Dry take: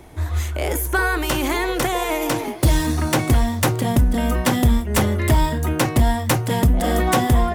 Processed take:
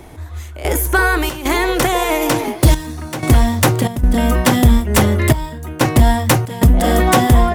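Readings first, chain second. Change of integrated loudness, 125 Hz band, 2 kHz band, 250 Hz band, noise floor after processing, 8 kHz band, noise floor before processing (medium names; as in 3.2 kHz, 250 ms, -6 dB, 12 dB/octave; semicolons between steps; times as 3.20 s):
+5.0 dB, +4.5 dB, +5.0 dB, +4.5 dB, -32 dBFS, +4.5 dB, -27 dBFS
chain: trance gate "x...xxxx.xxxxxxx" 93 bpm -12 dB; trim +5.5 dB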